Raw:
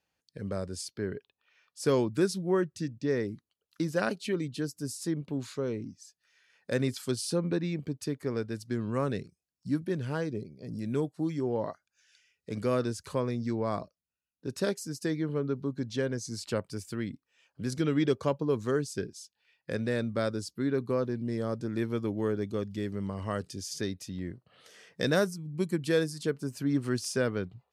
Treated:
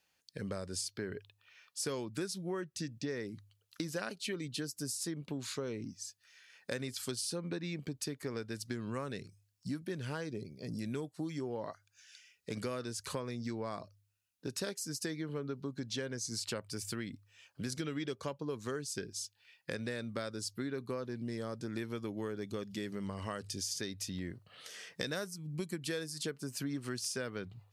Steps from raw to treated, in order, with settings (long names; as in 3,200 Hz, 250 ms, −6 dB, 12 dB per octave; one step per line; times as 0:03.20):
tilt shelving filter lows −4.5 dB, about 1,300 Hz
hum removal 50.63 Hz, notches 2
downward compressor 6 to 1, threshold −39 dBFS, peak gain reduction 15 dB
level +3.5 dB